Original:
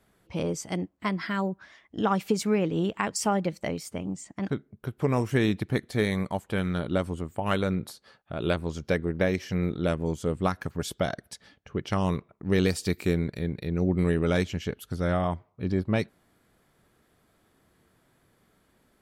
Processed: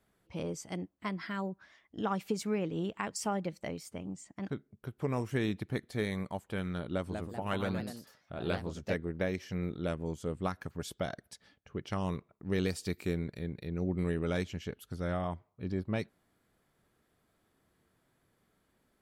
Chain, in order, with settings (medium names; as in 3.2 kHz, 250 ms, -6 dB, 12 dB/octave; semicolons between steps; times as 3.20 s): 6.87–8.99 s: ever faster or slower copies 202 ms, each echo +2 st, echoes 2, each echo -6 dB; trim -8 dB